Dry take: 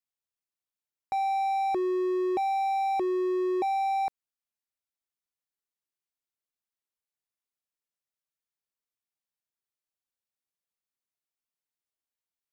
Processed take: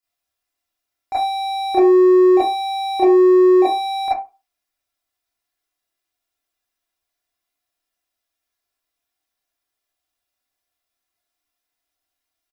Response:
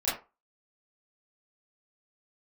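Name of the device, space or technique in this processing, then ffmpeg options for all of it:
microphone above a desk: -filter_complex "[0:a]aecho=1:1:2.9:0.68[link_01];[1:a]atrim=start_sample=2205[link_02];[link_01][link_02]afir=irnorm=-1:irlink=0,volume=3.5dB"

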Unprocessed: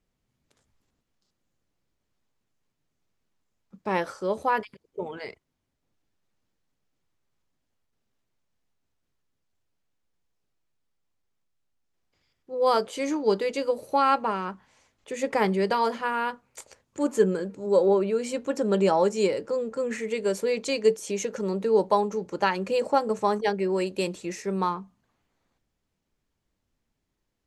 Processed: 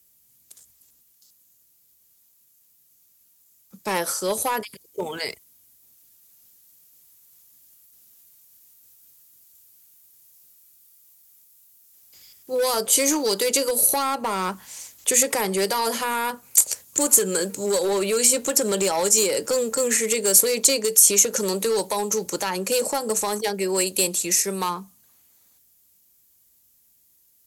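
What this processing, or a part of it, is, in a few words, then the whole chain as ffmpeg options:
FM broadcast chain: -filter_complex "[0:a]highpass=40,dynaudnorm=framelen=580:gausssize=21:maxgain=10dB,acrossover=split=330|1300[link_01][link_02][link_03];[link_01]acompressor=threshold=-33dB:ratio=4[link_04];[link_02]acompressor=threshold=-21dB:ratio=4[link_05];[link_03]acompressor=threshold=-36dB:ratio=4[link_06];[link_04][link_05][link_06]amix=inputs=3:normalize=0,aemphasis=mode=production:type=75fm,alimiter=limit=-16dB:level=0:latency=1:release=63,asoftclip=type=hard:threshold=-20dB,lowpass=frequency=15000:width=0.5412,lowpass=frequency=15000:width=1.3066,aemphasis=mode=production:type=75fm,volume=2.5dB"

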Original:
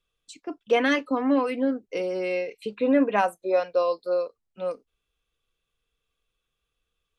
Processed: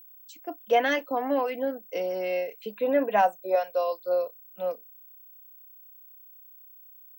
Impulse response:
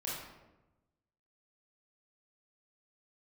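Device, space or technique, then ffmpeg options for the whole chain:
old television with a line whistle: -filter_complex "[0:a]highpass=frequency=190:width=0.5412,highpass=frequency=190:width=1.3066,equalizer=frequency=260:width_type=q:width=4:gain=-10,equalizer=frequency=390:width_type=q:width=4:gain=-7,equalizer=frequency=710:width_type=q:width=4:gain=6,equalizer=frequency=1200:width_type=q:width=4:gain=-8,equalizer=frequency=2400:width_type=q:width=4:gain=-5,equalizer=frequency=4100:width_type=q:width=4:gain=-6,lowpass=frequency=6800:width=0.5412,lowpass=frequency=6800:width=1.3066,aeval=exprs='val(0)+0.00398*sin(2*PI*15734*n/s)':channel_layout=same,asettb=1/sr,asplit=3[link_01][link_02][link_03];[link_01]atrim=end=3.554[link_04];[link_02]atrim=start=3.55:end=4,asetpts=PTS-STARTPTS,afade=type=in:duration=0.004:curve=qsin,afade=type=out:start_time=0.446:duration=0.004:curve=qsin,lowshelf=frequency=370:gain=-10.5[link_05];[link_03]atrim=start=3.996[link_06];[link_04][link_05]acrossfade=duration=0.004:curve1=hsin:curve2=qsin[link_07];[link_07][link_06]acrossfade=duration=0.004:curve1=qsin:curve2=hsin"

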